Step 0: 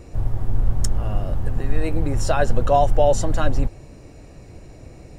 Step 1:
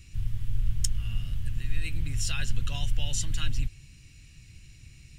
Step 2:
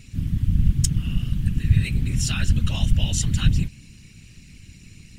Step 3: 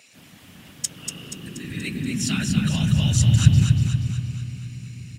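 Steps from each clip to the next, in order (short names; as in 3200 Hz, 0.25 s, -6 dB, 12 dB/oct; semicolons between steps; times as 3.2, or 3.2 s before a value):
EQ curve 140 Hz 0 dB, 620 Hz -28 dB, 2900 Hz +12 dB, 4300 Hz +7 dB; gain -7.5 dB
whisperiser; gain +5.5 dB
feedback echo 0.239 s, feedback 53%, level -5 dB; on a send at -13 dB: reverb RT60 4.0 s, pre-delay 33 ms; on the sum: high-pass sweep 650 Hz -> 110 Hz, 0.72–3.27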